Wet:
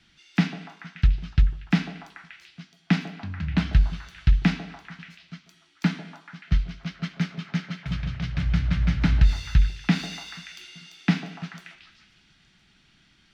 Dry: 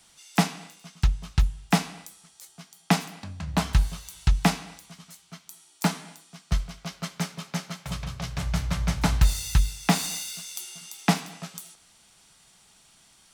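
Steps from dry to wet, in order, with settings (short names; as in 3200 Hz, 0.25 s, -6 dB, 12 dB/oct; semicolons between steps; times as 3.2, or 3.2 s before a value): band shelf 710 Hz -13 dB; in parallel at +1 dB: limiter -17 dBFS, peak gain reduction 8.5 dB; on the sum: air absorption 260 m; delay with a stepping band-pass 0.145 s, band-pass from 520 Hz, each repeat 0.7 oct, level -4.5 dB; gain -1.5 dB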